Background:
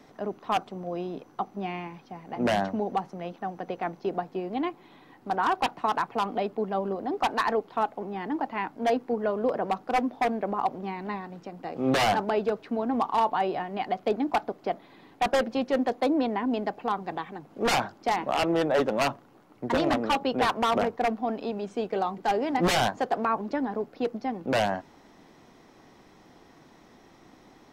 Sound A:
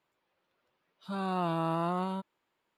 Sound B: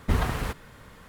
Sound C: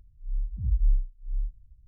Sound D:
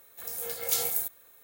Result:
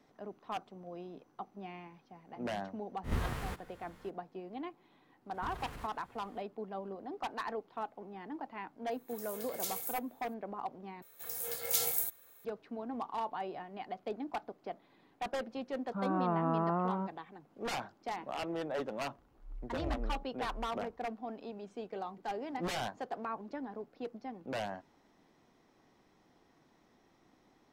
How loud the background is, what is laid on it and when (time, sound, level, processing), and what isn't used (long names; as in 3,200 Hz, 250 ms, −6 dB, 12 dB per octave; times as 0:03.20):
background −13 dB
0:03.03: mix in B −11 dB, fades 0.02 s + peak hold with a rise ahead of every peak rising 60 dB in 0.33 s
0:05.34: mix in B −14.5 dB + downward compressor, threshold −27 dBFS
0:08.91: mix in D −11 dB
0:11.02: overwrite with D −3.5 dB
0:14.86: mix in A −1 dB + low-pass filter 1,700 Hz 24 dB per octave
0:19.18: mix in C −10.5 dB + high-pass filter 60 Hz 6 dB per octave